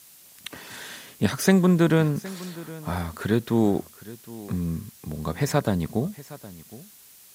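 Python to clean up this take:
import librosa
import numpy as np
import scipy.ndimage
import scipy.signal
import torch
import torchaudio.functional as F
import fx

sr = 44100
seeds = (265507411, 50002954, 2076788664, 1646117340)

y = fx.noise_reduce(x, sr, print_start_s=6.83, print_end_s=7.33, reduce_db=17.0)
y = fx.fix_echo_inverse(y, sr, delay_ms=765, level_db=-18.5)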